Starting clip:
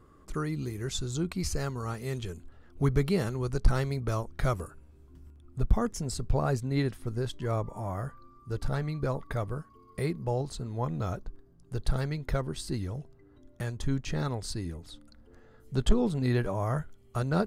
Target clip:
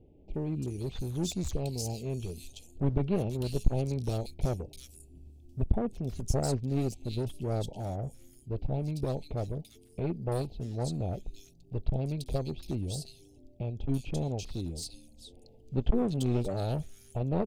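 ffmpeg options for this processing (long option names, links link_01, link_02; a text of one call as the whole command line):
ffmpeg -i in.wav -filter_complex "[0:a]asuperstop=centerf=1400:order=12:qfactor=0.91,aeval=exprs='clip(val(0),-1,0.0251)':channel_layout=same,acrossover=split=2800[link_01][link_02];[link_02]adelay=340[link_03];[link_01][link_03]amix=inputs=2:normalize=0" out.wav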